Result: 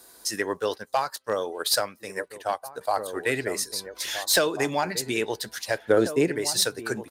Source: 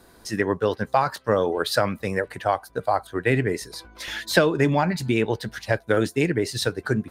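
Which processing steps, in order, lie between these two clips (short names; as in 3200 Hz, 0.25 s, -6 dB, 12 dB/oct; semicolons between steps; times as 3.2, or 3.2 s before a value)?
tone controls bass -13 dB, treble +13 dB; overloaded stage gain 10.5 dB; 5.78–6.28 tilt shelf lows +8.5 dB, about 1400 Hz; outdoor echo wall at 290 m, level -9 dB; 0.78–2.81 upward expander 1.5:1, over -42 dBFS; gain -3 dB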